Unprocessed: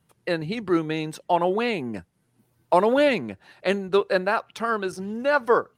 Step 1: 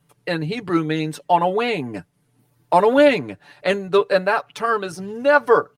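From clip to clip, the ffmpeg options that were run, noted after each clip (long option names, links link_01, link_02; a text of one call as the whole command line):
ffmpeg -i in.wav -af "aecho=1:1:6.9:0.65,volume=2.5dB" out.wav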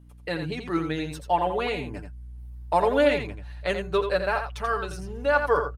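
ffmpeg -i in.wav -af "aeval=exprs='val(0)+0.00708*(sin(2*PI*60*n/s)+sin(2*PI*2*60*n/s)/2+sin(2*PI*3*60*n/s)/3+sin(2*PI*4*60*n/s)/4+sin(2*PI*5*60*n/s)/5)':channel_layout=same,aecho=1:1:85:0.422,asubboost=boost=7:cutoff=83,volume=-6.5dB" out.wav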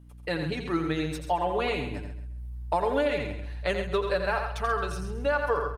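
ffmpeg -i in.wav -af "acompressor=threshold=-22dB:ratio=6,aecho=1:1:134|268|402:0.282|0.0789|0.0221" out.wav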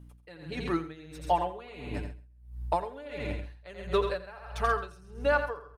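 ffmpeg -i in.wav -af "aeval=exprs='val(0)*pow(10,-21*(0.5-0.5*cos(2*PI*1.5*n/s))/20)':channel_layout=same,volume=1.5dB" out.wav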